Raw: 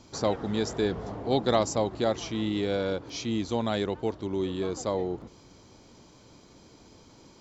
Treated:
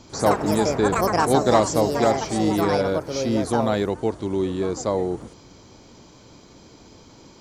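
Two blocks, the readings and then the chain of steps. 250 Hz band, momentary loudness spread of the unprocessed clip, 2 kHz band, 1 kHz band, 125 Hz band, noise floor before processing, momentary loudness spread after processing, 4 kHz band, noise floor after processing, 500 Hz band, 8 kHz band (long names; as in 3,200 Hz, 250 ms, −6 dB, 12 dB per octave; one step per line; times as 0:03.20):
+7.0 dB, 6 LU, +9.0 dB, +11.0 dB, +7.0 dB, −55 dBFS, 7 LU, +3.0 dB, −49 dBFS, +7.5 dB, can't be measured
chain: delay with pitch and tempo change per echo 96 ms, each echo +6 semitones, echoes 2
dynamic equaliser 3,200 Hz, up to −7 dB, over −52 dBFS, Q 1.9
level +6 dB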